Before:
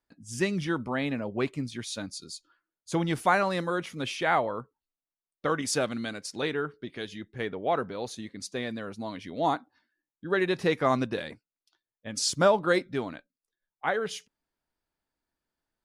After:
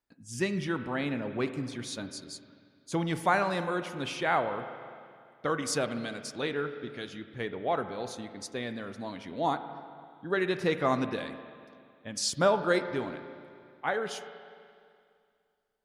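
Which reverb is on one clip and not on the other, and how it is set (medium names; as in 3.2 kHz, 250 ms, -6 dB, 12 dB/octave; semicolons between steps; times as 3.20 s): spring tank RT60 2.3 s, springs 34/42/49 ms, chirp 75 ms, DRR 9.5 dB; trim -2.5 dB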